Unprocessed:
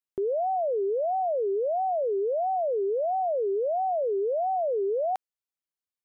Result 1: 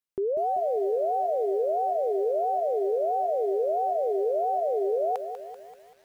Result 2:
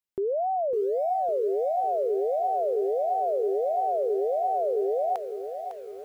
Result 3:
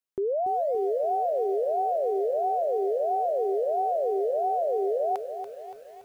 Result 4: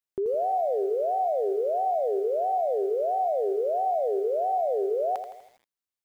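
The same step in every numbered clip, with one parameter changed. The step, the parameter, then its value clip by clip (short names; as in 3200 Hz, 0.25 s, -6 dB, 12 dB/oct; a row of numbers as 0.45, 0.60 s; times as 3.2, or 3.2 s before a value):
lo-fi delay, time: 193, 554, 285, 82 ms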